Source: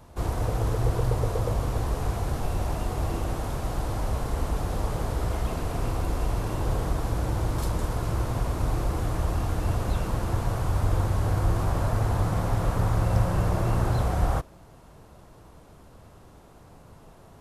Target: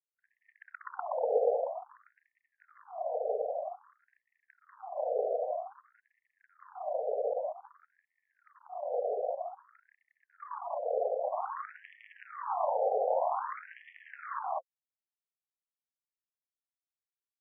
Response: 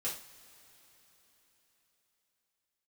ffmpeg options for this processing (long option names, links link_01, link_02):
-filter_complex "[0:a]afwtdn=0.0398,afftfilt=real='re*gte(hypot(re,im),0.0316)':imag='im*gte(hypot(re,im),0.0316)':win_size=1024:overlap=0.75,aemphasis=mode=production:type=riaa,acrossover=split=150|830[link_01][link_02][link_03];[link_03]acompressor=threshold=-52dB:ratio=5[link_04];[link_01][link_02][link_04]amix=inputs=3:normalize=0,aeval=exprs='(tanh(10*val(0)+0.8)-tanh(0.8))/10':channel_layout=same,aeval=exprs='0.158*sin(PI/2*4.47*val(0)/0.158)':channel_layout=same,asplit=2[link_05][link_06];[link_06]aecho=0:1:192:0.631[link_07];[link_05][link_07]amix=inputs=2:normalize=0,afftfilt=real='re*between(b*sr/1024,580*pow(2500/580,0.5+0.5*sin(2*PI*0.52*pts/sr))/1.41,580*pow(2500/580,0.5+0.5*sin(2*PI*0.52*pts/sr))*1.41)':imag='im*between(b*sr/1024,580*pow(2500/580,0.5+0.5*sin(2*PI*0.52*pts/sr))/1.41,580*pow(2500/580,0.5+0.5*sin(2*PI*0.52*pts/sr))*1.41)':win_size=1024:overlap=0.75,volume=-1dB"